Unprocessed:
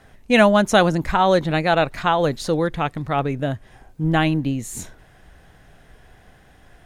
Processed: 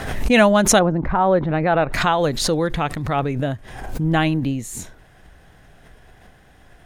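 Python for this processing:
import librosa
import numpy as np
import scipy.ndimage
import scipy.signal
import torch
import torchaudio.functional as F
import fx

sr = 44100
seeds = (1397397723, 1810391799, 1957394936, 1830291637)

y = fx.lowpass(x, sr, hz=fx.line((0.78, 1000.0), (1.92, 2000.0)), slope=12, at=(0.78, 1.92), fade=0.02)
y = fx.pre_swell(y, sr, db_per_s=53.0)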